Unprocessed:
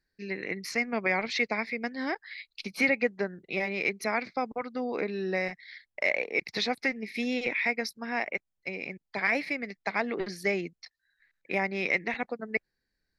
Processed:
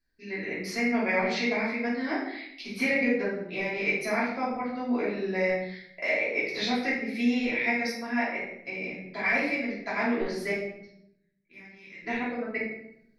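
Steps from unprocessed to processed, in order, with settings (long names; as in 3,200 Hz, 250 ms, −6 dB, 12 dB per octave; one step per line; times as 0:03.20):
0:10.51–0:12.03: guitar amp tone stack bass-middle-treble 6-0-2
rectangular room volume 190 cubic metres, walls mixed, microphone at 3 metres
level −8.5 dB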